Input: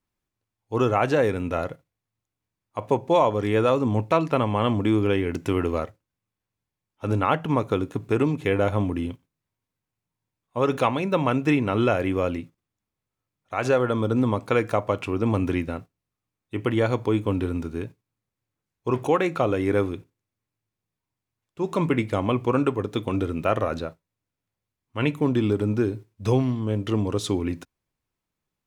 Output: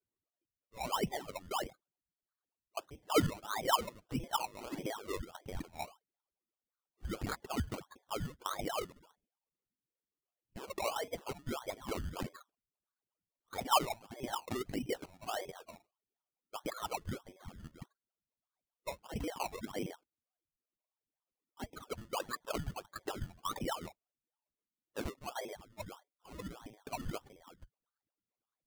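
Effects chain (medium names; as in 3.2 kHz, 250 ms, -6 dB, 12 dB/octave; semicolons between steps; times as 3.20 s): spectral gate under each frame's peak -25 dB strong; wah-wah 1.8 Hz 510–2500 Hz, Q 20; frequency inversion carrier 3.6 kHz; in parallel at +2 dB: compressor with a negative ratio -44 dBFS, ratio -1; on the sum: decimation with a swept rate 22×, swing 60% 1.6 Hz; trim -3 dB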